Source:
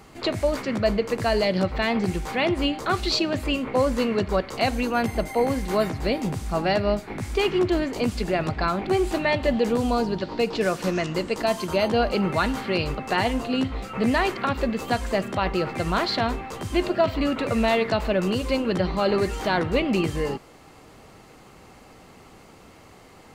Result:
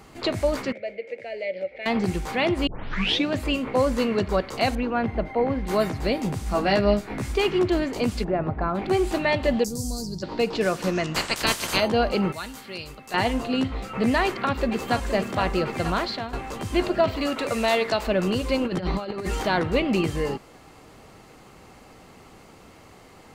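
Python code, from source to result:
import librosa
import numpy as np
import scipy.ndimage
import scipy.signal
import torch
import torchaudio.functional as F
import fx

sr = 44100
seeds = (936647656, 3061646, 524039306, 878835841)

y = fx.double_bandpass(x, sr, hz=1100.0, octaves=2.0, at=(0.72, 1.86))
y = fx.air_absorb(y, sr, metres=360.0, at=(4.75, 5.67))
y = fx.doubler(y, sr, ms=15.0, db=-3.0, at=(6.45, 7.32))
y = fx.lowpass(y, sr, hz=1200.0, slope=12, at=(8.23, 8.74), fade=0.02)
y = fx.curve_eq(y, sr, hz=(150.0, 240.0, 2900.0, 5100.0), db=(0, -8, -28, 11), at=(9.63, 10.22), fade=0.02)
y = fx.spec_clip(y, sr, under_db=27, at=(11.14, 11.79), fade=0.02)
y = fx.pre_emphasis(y, sr, coefficient=0.8, at=(12.32, 13.14))
y = fx.echo_throw(y, sr, start_s=14.24, length_s=0.88, ms=470, feedback_pct=75, wet_db=-9.0)
y = fx.bass_treble(y, sr, bass_db=-9, treble_db=6, at=(17.16, 18.07))
y = fx.over_compress(y, sr, threshold_db=-26.0, ratio=-0.5, at=(18.61, 19.43))
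y = fx.edit(y, sr, fx.tape_start(start_s=2.67, length_s=0.62),
    fx.fade_out_to(start_s=15.86, length_s=0.47, floor_db=-13.0), tone=tone)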